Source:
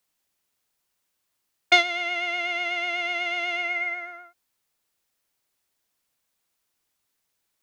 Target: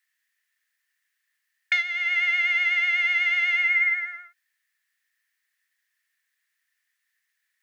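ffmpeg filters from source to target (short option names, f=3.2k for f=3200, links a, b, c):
-af "alimiter=limit=-14.5dB:level=0:latency=1:release=454,highpass=f=1.8k:t=q:w=12,volume=-4dB"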